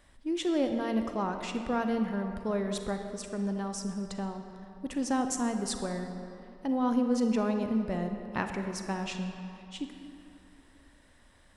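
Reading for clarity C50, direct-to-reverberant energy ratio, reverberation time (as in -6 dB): 6.0 dB, 5.5 dB, 2.9 s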